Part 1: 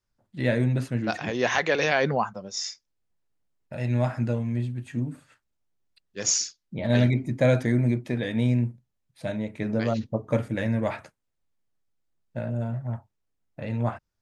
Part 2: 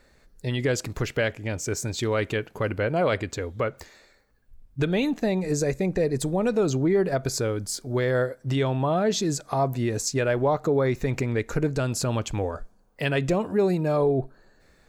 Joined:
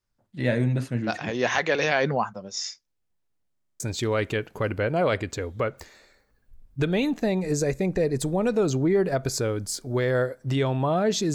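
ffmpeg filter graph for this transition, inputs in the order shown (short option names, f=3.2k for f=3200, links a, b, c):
-filter_complex "[0:a]apad=whole_dur=11.34,atrim=end=11.34,asplit=7[a][b][c][d][e][f][g];[a]atrim=end=3.562[h];[b]atrim=start=3.518:end=3.562[i];[c]atrim=start=3.518:end=3.562[j];[d]atrim=start=3.518:end=3.562[k];[e]atrim=start=3.518:end=3.562[l];[f]atrim=start=3.518:end=3.562[m];[g]atrim=start=3.518:end=3.562[n];[1:a]atrim=start=1.798:end=9.34[o];[h][i]acrossfade=d=0.004:c1=hsin:c2=hsin[p];[p][j]acrossfade=d=0.004:c1=hsin:c2=hsin[q];[q][k]acrossfade=d=0.004:c1=hsin:c2=hsin[r];[r][l]acrossfade=d=0.004:c1=hsin:c2=hsin[s];[s][m]acrossfade=d=0.004:c1=hsin:c2=hsin[t];[t][n]acrossfade=d=0.004:c1=hsin:c2=hsin[u];[u][o]acrossfade=d=0.004:c1=hsin:c2=hsin"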